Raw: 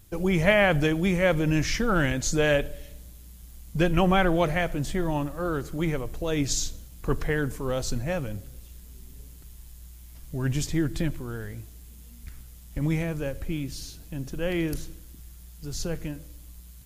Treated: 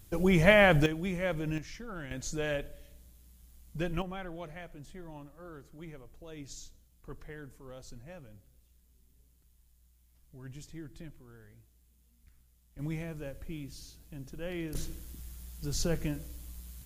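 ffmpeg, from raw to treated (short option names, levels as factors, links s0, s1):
-af "asetnsamples=n=441:p=0,asendcmd='0.86 volume volume -10dB;1.58 volume volume -18.5dB;2.11 volume volume -11dB;4.02 volume volume -19.5dB;12.79 volume volume -10.5dB;14.75 volume volume 0dB',volume=0.891"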